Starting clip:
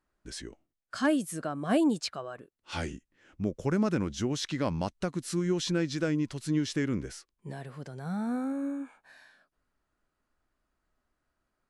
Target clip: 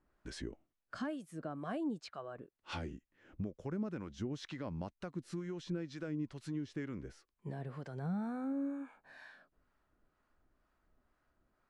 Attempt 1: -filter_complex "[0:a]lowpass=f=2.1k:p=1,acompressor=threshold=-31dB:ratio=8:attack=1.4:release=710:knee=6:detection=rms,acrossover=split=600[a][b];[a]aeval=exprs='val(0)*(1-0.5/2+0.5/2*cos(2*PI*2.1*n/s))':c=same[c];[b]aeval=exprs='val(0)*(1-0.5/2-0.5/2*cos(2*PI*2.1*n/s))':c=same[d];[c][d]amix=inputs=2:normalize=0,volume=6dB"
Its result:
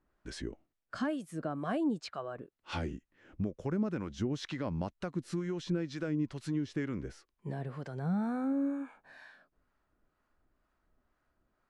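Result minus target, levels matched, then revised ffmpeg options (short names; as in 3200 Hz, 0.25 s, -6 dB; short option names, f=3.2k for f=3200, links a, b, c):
compressor: peak gain reduction -6 dB
-filter_complex "[0:a]lowpass=f=2.1k:p=1,acompressor=threshold=-38dB:ratio=8:attack=1.4:release=710:knee=6:detection=rms,acrossover=split=600[a][b];[a]aeval=exprs='val(0)*(1-0.5/2+0.5/2*cos(2*PI*2.1*n/s))':c=same[c];[b]aeval=exprs='val(0)*(1-0.5/2-0.5/2*cos(2*PI*2.1*n/s))':c=same[d];[c][d]amix=inputs=2:normalize=0,volume=6dB"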